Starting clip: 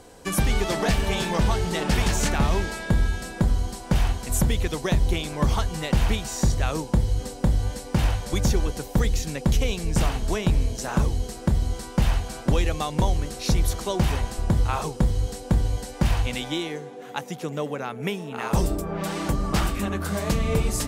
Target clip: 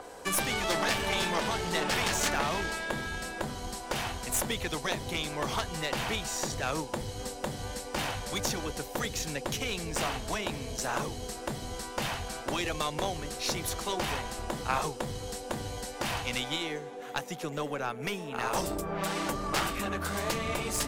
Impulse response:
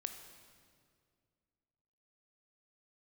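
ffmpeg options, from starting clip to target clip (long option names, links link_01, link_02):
-filter_complex "[0:a]lowshelf=frequency=410:gain=-8,afftfilt=real='re*lt(hypot(re,im),0.282)':imag='im*lt(hypot(re,im),0.282)':win_size=1024:overlap=0.75,aeval=exprs='0.224*(cos(1*acos(clip(val(0)/0.224,-1,1)))-cos(1*PI/2))+0.0794*(cos(4*acos(clip(val(0)/0.224,-1,1)))-cos(4*PI/2))+0.0282*(cos(6*acos(clip(val(0)/0.224,-1,1)))-cos(6*PI/2))':channel_layout=same,acrossover=split=340|1700|4200[link_01][link_02][link_03][link_04];[link_01]aeval=exprs='0.0237*(abs(mod(val(0)/0.0237+3,4)-2)-1)':channel_layout=same[link_05];[link_02]acompressor=mode=upward:threshold=-39dB:ratio=2.5[link_06];[link_05][link_06][link_03][link_04]amix=inputs=4:normalize=0,adynamicequalizer=threshold=0.00562:dfrequency=4600:dqfactor=0.7:tfrequency=4600:tqfactor=0.7:attack=5:release=100:ratio=0.375:range=1.5:mode=cutabove:tftype=highshelf"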